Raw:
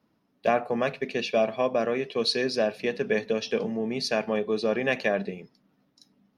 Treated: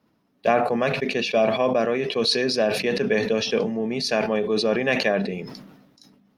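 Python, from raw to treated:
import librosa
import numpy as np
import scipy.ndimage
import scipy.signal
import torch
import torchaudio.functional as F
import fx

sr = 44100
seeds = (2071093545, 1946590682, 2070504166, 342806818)

y = fx.sustainer(x, sr, db_per_s=51.0)
y = y * 10.0 ** (3.0 / 20.0)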